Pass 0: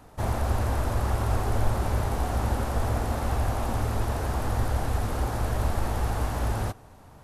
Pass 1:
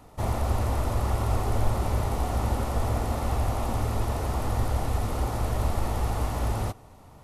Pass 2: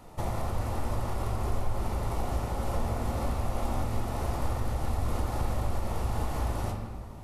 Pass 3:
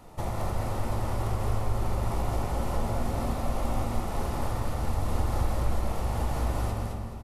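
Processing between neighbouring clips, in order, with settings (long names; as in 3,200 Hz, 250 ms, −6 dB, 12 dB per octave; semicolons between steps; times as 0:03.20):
notch filter 1,600 Hz, Q 6.2
downward compressor, threshold −29 dBFS, peak gain reduction 12 dB; on a send at −1.5 dB: convolution reverb RT60 1.6 s, pre-delay 5 ms
repeating echo 215 ms, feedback 28%, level −4 dB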